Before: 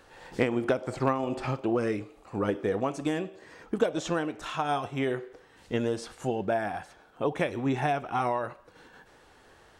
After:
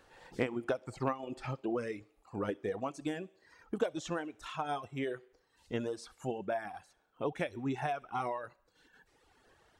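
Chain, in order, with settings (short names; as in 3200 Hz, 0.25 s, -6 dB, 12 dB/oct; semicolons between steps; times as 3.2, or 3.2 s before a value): on a send: thin delay 67 ms, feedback 50%, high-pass 2500 Hz, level -12 dB; on the sum: reverb removal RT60 1.3 s; gain -6.5 dB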